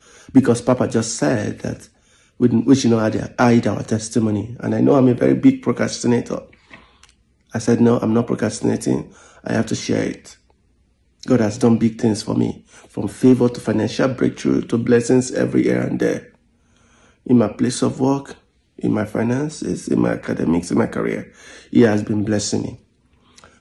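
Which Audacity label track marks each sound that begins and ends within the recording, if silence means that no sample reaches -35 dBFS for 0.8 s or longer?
11.230000	16.260000	sound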